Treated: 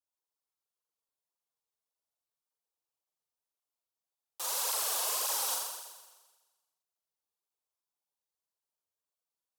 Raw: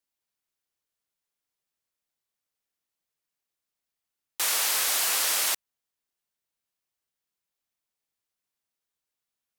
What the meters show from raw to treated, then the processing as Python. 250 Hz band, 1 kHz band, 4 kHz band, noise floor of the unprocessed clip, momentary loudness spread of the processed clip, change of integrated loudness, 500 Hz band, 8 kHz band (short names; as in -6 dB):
n/a, -3.0 dB, -8.5 dB, under -85 dBFS, 11 LU, -7.0 dB, -3.0 dB, -6.5 dB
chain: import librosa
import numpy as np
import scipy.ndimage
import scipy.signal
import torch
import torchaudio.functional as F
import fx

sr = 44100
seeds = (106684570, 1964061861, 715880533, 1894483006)

p1 = fx.graphic_eq(x, sr, hz=(125, 250, 500, 1000, 2000), db=(-5, -7, 4, 6, -11))
p2 = p1 + fx.room_flutter(p1, sr, wall_m=7.3, rt60_s=1.3, dry=0)
p3 = fx.flanger_cancel(p2, sr, hz=1.8, depth_ms=5.3)
y = p3 * librosa.db_to_amplitude(-7.5)